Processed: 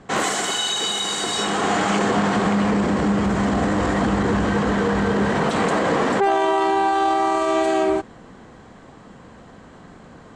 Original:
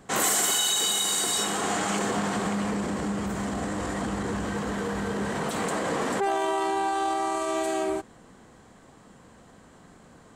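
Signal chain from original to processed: in parallel at +2 dB: gain riding; on the sum: distance through air 100 m; trim +1 dB

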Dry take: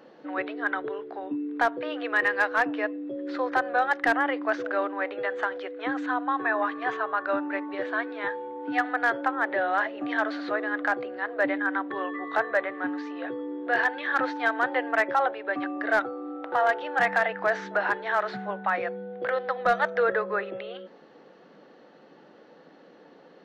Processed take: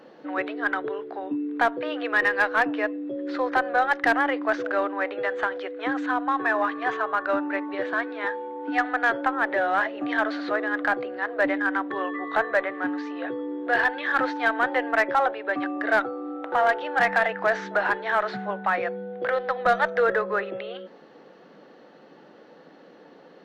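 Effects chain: 7.93–9.10 s: elliptic band-pass 200–6700 Hz; in parallel at -9 dB: one-sided clip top -24.5 dBFS

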